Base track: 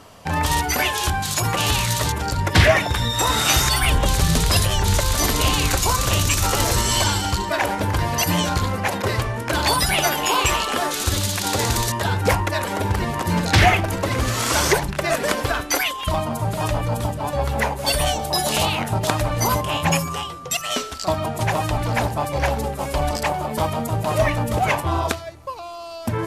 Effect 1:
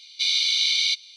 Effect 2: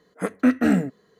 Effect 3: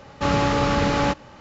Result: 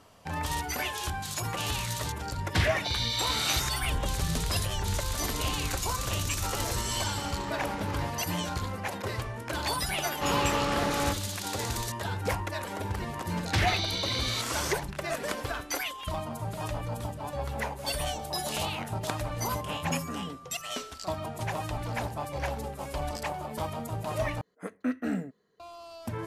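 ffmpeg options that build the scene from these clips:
-filter_complex "[1:a]asplit=2[a][b];[3:a]asplit=2[c][d];[2:a]asplit=2[e][f];[0:a]volume=-11.5dB[g];[c]acompressor=threshold=-33dB:ratio=6:attack=3.2:release=140:knee=1:detection=peak[h];[d]bass=f=250:g=-3,treble=f=4k:g=1[i];[e]alimiter=limit=-19dB:level=0:latency=1:release=35[j];[g]asplit=2[k][l];[k]atrim=end=24.414[m];[f]atrim=end=1.19,asetpts=PTS-STARTPTS,volume=-12dB[n];[l]atrim=start=25.596[o];[a]atrim=end=1.16,asetpts=PTS-STARTPTS,volume=-10.5dB,afade=t=in:d=0.004:c=hsin,afade=t=out:st=1.156:d=0.004:c=hsin,adelay=2650[p];[h]atrim=end=1.4,asetpts=PTS-STARTPTS,volume=-2dB,afade=t=in:d=0.004:c=hsin,afade=t=out:st=1.396:d=0.004:c=hsin,adelay=6970[q];[i]atrim=end=1.4,asetpts=PTS-STARTPTS,volume=-7.5dB,afade=t=in:d=0.004:c=hsin,afade=t=out:st=1.396:d=0.004:c=hsin,adelay=10000[r];[b]atrim=end=1.16,asetpts=PTS-STARTPTS,volume=-11dB,afade=t=in:d=0.004:c=hsin,afade=t=out:st=1.156:d=0.004:c=hsin,adelay=13470[s];[j]atrim=end=1.19,asetpts=PTS-STARTPTS,volume=-12dB,afade=t=in:d=0.004:c=hsin,afade=t=out:st=1.186:d=0.004:c=hsin,adelay=19470[t];[m][n]acrossfade=d=0.004:c1=hsin:c2=hsin[u];[u][o]acrossfade=d=0.004:c1=hsin:c2=hsin[v];[v][p][q][r][s][t]amix=inputs=6:normalize=0"

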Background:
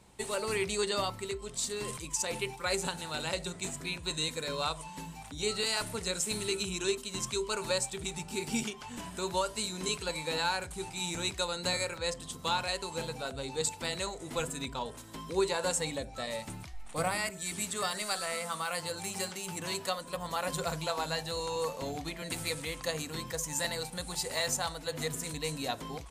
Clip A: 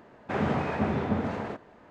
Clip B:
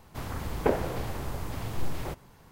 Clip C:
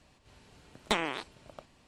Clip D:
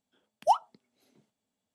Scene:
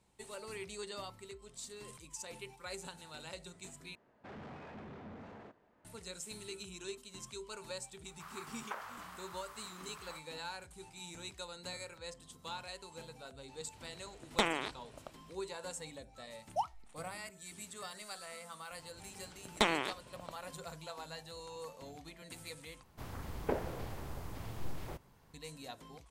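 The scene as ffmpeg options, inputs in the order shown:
-filter_complex "[2:a]asplit=2[a][b];[3:a]asplit=2[c][d];[0:a]volume=-13dB[e];[1:a]asoftclip=type=tanh:threshold=-30dB[f];[a]highpass=f=1.2k:t=q:w=3.3[g];[e]asplit=3[h][i][j];[h]atrim=end=3.954[k];[f]atrim=end=1.9,asetpts=PTS-STARTPTS,volume=-16dB[l];[i]atrim=start=5.846:end=22.834[m];[b]atrim=end=2.51,asetpts=PTS-STARTPTS,volume=-9.5dB[n];[j]atrim=start=25.336[o];[g]atrim=end=2.51,asetpts=PTS-STARTPTS,volume=-13.5dB,afade=t=in:d=0.004:c=hsin,afade=t=out:st=2.506:d=0.004:c=hsin,adelay=8050[p];[c]atrim=end=1.87,asetpts=PTS-STARTPTS,volume=-2dB,afade=t=in:d=0.004:c=hsin,afade=t=out:st=1.866:d=0.004:c=hsin,adelay=594468S[q];[4:a]atrim=end=1.74,asetpts=PTS-STARTPTS,volume=-11.5dB,afade=t=in:d=0.004:c=hsin,afade=t=out:st=1.736:d=0.004:c=hsin,adelay=16090[r];[d]atrim=end=1.87,asetpts=PTS-STARTPTS,volume=-0.5dB,afade=t=in:d=0.004:c=hsin,afade=t=out:st=1.866:d=0.004:c=hsin,adelay=18700[s];[k][l]acrossfade=d=0.004:c1=hsin:c2=hsin[t];[t][m]acrossfade=d=0.004:c1=hsin:c2=hsin[u];[u][n]acrossfade=d=0.004:c1=hsin:c2=hsin[v];[v][o]acrossfade=d=0.004:c1=hsin:c2=hsin[w];[w][p][q][r][s]amix=inputs=5:normalize=0"

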